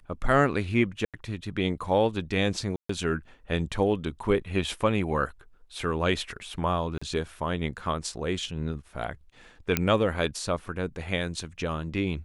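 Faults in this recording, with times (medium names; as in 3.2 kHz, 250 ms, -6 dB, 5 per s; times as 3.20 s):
1.05–1.14 s: dropout 87 ms
2.76–2.89 s: dropout 134 ms
6.98–7.01 s: dropout 35 ms
9.77 s: pop -6 dBFS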